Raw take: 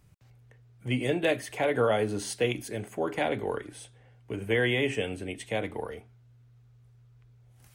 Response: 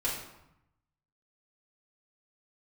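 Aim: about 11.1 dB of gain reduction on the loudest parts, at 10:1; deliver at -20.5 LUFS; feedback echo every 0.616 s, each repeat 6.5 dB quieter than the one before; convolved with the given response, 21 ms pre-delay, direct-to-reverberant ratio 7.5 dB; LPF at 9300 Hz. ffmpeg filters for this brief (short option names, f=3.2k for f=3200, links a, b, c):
-filter_complex "[0:a]lowpass=9.3k,acompressor=threshold=-32dB:ratio=10,aecho=1:1:616|1232|1848|2464|3080|3696:0.473|0.222|0.105|0.0491|0.0231|0.0109,asplit=2[a][b];[1:a]atrim=start_sample=2205,adelay=21[c];[b][c]afir=irnorm=-1:irlink=0,volume=-14dB[d];[a][d]amix=inputs=2:normalize=0,volume=16dB"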